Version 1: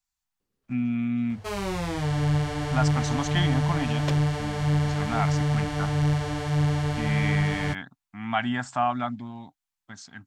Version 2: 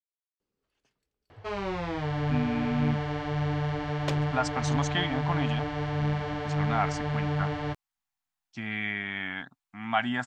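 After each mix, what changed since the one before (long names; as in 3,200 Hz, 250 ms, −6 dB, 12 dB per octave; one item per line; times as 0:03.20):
speech: entry +1.60 s
first sound: add high-frequency loss of the air 190 metres
master: add bass and treble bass −6 dB, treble −2 dB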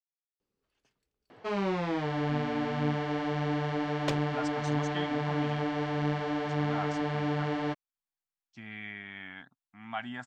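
speech −10.0 dB
first sound: add low shelf with overshoot 140 Hz −13.5 dB, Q 3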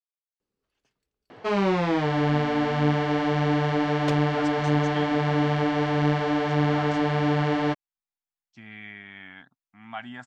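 first sound +7.5 dB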